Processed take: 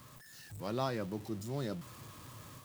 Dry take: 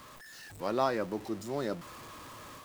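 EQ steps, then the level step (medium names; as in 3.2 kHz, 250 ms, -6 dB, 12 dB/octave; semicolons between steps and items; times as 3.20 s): peaking EQ 120 Hz +15 dB 1.6 oct; treble shelf 5.8 kHz +9.5 dB; dynamic bell 3.3 kHz, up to +5 dB, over -51 dBFS, Q 1.5; -8.5 dB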